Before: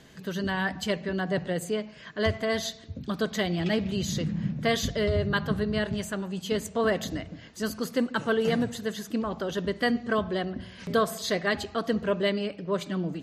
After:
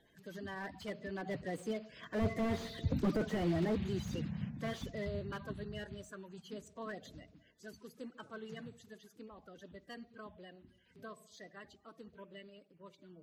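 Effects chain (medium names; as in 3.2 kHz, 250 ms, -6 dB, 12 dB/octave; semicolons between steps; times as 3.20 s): coarse spectral quantiser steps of 30 dB; Doppler pass-by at 2.89 s, 6 m/s, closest 1.5 m; slew-rate limiter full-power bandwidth 7.1 Hz; trim +5.5 dB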